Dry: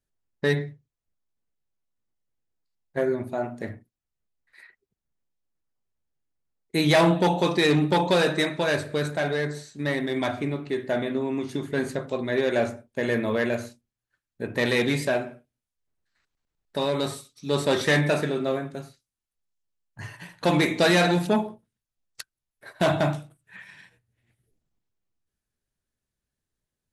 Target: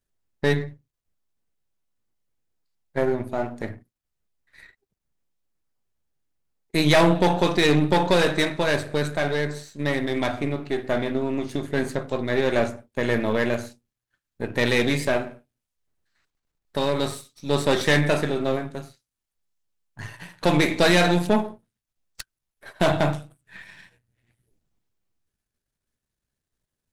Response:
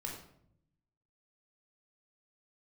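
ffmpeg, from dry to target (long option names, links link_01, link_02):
-af "aeval=exprs='if(lt(val(0),0),0.447*val(0),val(0))':channel_layout=same,volume=4dB"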